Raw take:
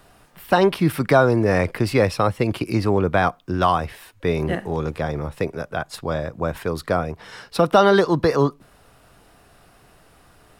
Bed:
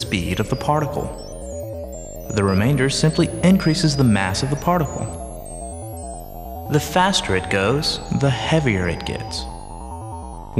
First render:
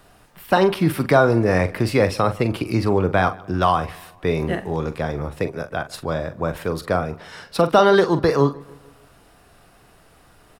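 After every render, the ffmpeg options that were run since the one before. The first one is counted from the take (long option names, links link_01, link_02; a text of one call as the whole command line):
ffmpeg -i in.wav -filter_complex "[0:a]asplit=2[link_01][link_02];[link_02]adelay=43,volume=-11.5dB[link_03];[link_01][link_03]amix=inputs=2:normalize=0,asplit=2[link_04][link_05];[link_05]adelay=149,lowpass=frequency=3700:poles=1,volume=-22.5dB,asplit=2[link_06][link_07];[link_07]adelay=149,lowpass=frequency=3700:poles=1,volume=0.52,asplit=2[link_08][link_09];[link_09]adelay=149,lowpass=frequency=3700:poles=1,volume=0.52,asplit=2[link_10][link_11];[link_11]adelay=149,lowpass=frequency=3700:poles=1,volume=0.52[link_12];[link_04][link_06][link_08][link_10][link_12]amix=inputs=5:normalize=0" out.wav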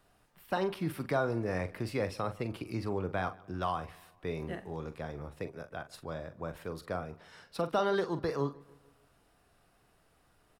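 ffmpeg -i in.wav -af "volume=-15.5dB" out.wav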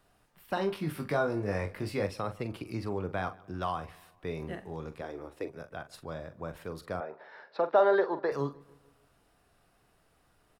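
ffmpeg -i in.wav -filter_complex "[0:a]asettb=1/sr,asplit=3[link_01][link_02][link_03];[link_01]atrim=end=0.554[link_04];[link_02]atrim=start=0.55:end=2.07,asetpts=PTS-STARTPTS,afade=type=in:duration=0.004:curve=qsin,afade=type=out:start_time=1.516:duration=0.004:curve=qsin,asplit=2[link_05][link_06];[link_06]adelay=20,volume=-5dB[link_07];[link_05][link_07]amix=inputs=2:normalize=0,atrim=end_sample=67032[link_08];[link_03]atrim=start=2.066[link_09];[link_04][link_08]acrossfade=duration=0.004:curve1=hsin:curve2=qsin[link_10];[link_10][link_09]acrossfade=duration=0.004:curve1=qsin:curve2=hsin,asettb=1/sr,asplit=3[link_11][link_12][link_13];[link_11]atrim=end=5.014[link_14];[link_12]atrim=start=5.01:end=5.48,asetpts=PTS-STARTPTS,afade=type=in:duration=0.004:curve=qsin,afade=type=out:start_time=0.466:duration=0.004:curve=qsin,lowshelf=frequency=240:width_type=q:width=3:gain=-8[link_15];[link_13]atrim=start=5.476[link_16];[link_14][link_15]acrossfade=duration=0.004:curve1=hsin:curve2=qsin[link_17];[link_17][link_16]acrossfade=duration=0.004:curve1=qsin:curve2=hsin,asettb=1/sr,asplit=3[link_18][link_19][link_20];[link_18]atrim=end=7.004[link_21];[link_19]atrim=start=7:end=8.32,asetpts=PTS-STARTPTS,afade=type=in:duration=0.004:curve=qsin,afade=type=out:start_time=1.316:duration=0.004:curve=qsin,highpass=350,equalizer=frequency=390:width_type=q:width=4:gain=6,equalizer=frequency=590:width_type=q:width=4:gain=9,equalizer=frequency=880:width_type=q:width=4:gain=8,equalizer=frequency=1700:width_type=q:width=4:gain=7,equalizer=frequency=3000:width_type=q:width=4:gain=-9,lowpass=frequency=3900:width=0.5412,lowpass=frequency=3900:width=1.3066[link_22];[link_20]atrim=start=8.316[link_23];[link_21][link_22]acrossfade=duration=0.004:curve1=hsin:curve2=qsin[link_24];[link_24][link_23]acrossfade=duration=0.004:curve1=qsin:curve2=hsin" out.wav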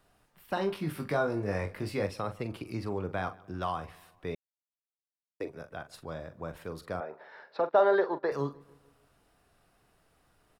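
ffmpeg -i in.wav -filter_complex "[0:a]asettb=1/sr,asplit=3[link_01][link_02][link_03];[link_01]atrim=end=7.604[link_04];[link_02]atrim=start=7.6:end=8.23,asetpts=PTS-STARTPTS,afade=type=in:duration=0.004:curve=qsin,afade=type=out:start_time=0.626:duration=0.004:curve=qsin,agate=range=-11dB:threshold=-37dB:ratio=16:release=100:detection=peak[link_05];[link_03]atrim=start=8.226[link_06];[link_04][link_05]acrossfade=duration=0.004:curve1=hsin:curve2=qsin[link_07];[link_07][link_06]acrossfade=duration=0.004:curve1=qsin:curve2=hsin,asplit=3[link_08][link_09][link_10];[link_08]atrim=end=4.35,asetpts=PTS-STARTPTS,afade=type=out:start_time=4.346:duration=0.004:curve=hsin[link_11];[link_09]atrim=start=4.35:end=5.4,asetpts=PTS-STARTPTS,volume=0[link_12];[link_10]atrim=start=5.4,asetpts=PTS-STARTPTS,afade=type=in:duration=0.004:curve=hsin[link_13];[link_11][link_12][link_13]concat=n=3:v=0:a=1" out.wav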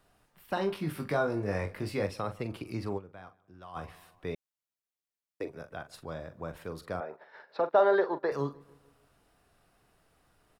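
ffmpeg -i in.wav -filter_complex "[0:a]asplit=3[link_01][link_02][link_03];[link_01]afade=type=out:start_time=6.97:duration=0.02[link_04];[link_02]agate=range=-6dB:threshold=-52dB:ratio=16:release=100:detection=peak,afade=type=in:start_time=6.97:duration=0.02,afade=type=out:start_time=7.48:duration=0.02[link_05];[link_03]afade=type=in:start_time=7.48:duration=0.02[link_06];[link_04][link_05][link_06]amix=inputs=3:normalize=0,asplit=3[link_07][link_08][link_09];[link_07]atrim=end=3.14,asetpts=PTS-STARTPTS,afade=type=out:start_time=2.97:duration=0.17:curve=exp:silence=0.16788[link_10];[link_08]atrim=start=3.14:end=3.6,asetpts=PTS-STARTPTS,volume=-15.5dB[link_11];[link_09]atrim=start=3.6,asetpts=PTS-STARTPTS,afade=type=in:duration=0.17:curve=exp:silence=0.16788[link_12];[link_10][link_11][link_12]concat=n=3:v=0:a=1" out.wav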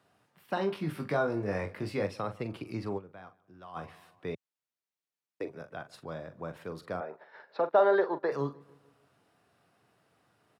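ffmpeg -i in.wav -af "highpass=frequency=100:width=0.5412,highpass=frequency=100:width=1.3066,highshelf=frequency=7800:gain=-9" out.wav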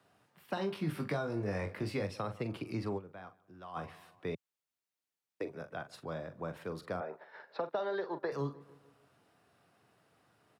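ffmpeg -i in.wav -filter_complex "[0:a]acrossover=split=180|3000[link_01][link_02][link_03];[link_02]acompressor=threshold=-33dB:ratio=10[link_04];[link_01][link_04][link_03]amix=inputs=3:normalize=0" out.wav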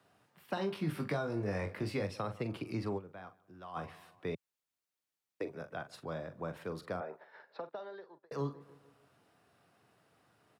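ffmpeg -i in.wav -filter_complex "[0:a]asplit=2[link_01][link_02];[link_01]atrim=end=8.31,asetpts=PTS-STARTPTS,afade=type=out:start_time=6.82:duration=1.49[link_03];[link_02]atrim=start=8.31,asetpts=PTS-STARTPTS,afade=type=in:duration=0.004:curve=hsin[link_04];[link_03][link_04]concat=n=2:v=0:a=1" out.wav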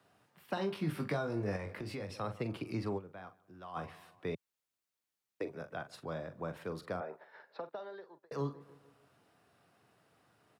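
ffmpeg -i in.wav -filter_complex "[0:a]asettb=1/sr,asplit=3[link_01][link_02][link_03];[link_01]atrim=end=1.564[link_04];[link_02]atrim=start=1.56:end=2.21,asetpts=PTS-STARTPTS,afade=type=in:duration=0.004:curve=qsin,afade=type=out:start_time=0.646:duration=0.004:curve=qsin,acompressor=threshold=-37dB:ratio=6:attack=3.2:release=140:knee=1:detection=peak[link_05];[link_03]atrim=start=2.206[link_06];[link_04][link_05]acrossfade=duration=0.004:curve1=hsin:curve2=qsin[link_07];[link_07][link_06]acrossfade=duration=0.004:curve1=qsin:curve2=hsin" out.wav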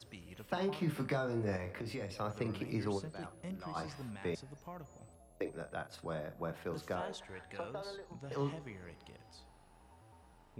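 ffmpeg -i in.wav -i bed.wav -filter_complex "[1:a]volume=-30.5dB[link_01];[0:a][link_01]amix=inputs=2:normalize=0" out.wav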